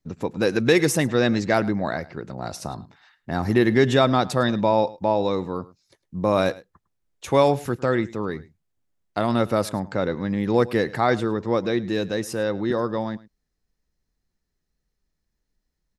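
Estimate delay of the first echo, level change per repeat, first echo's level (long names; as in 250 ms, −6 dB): 105 ms, repeats not evenly spaced, −20.0 dB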